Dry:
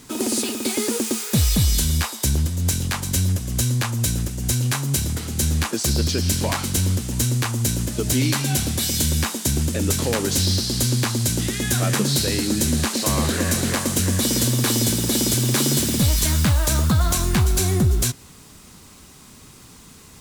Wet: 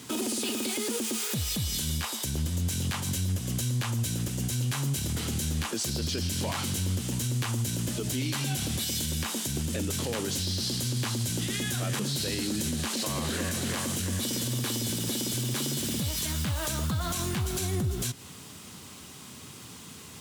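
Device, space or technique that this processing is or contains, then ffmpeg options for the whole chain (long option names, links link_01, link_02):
broadcast voice chain: -af "highpass=frequency=81:width=0.5412,highpass=frequency=81:width=1.3066,deesser=0.25,acompressor=threshold=-25dB:ratio=4,equalizer=frequency=3100:width_type=o:width=0.44:gain=5,alimiter=limit=-21.5dB:level=0:latency=1:release=27"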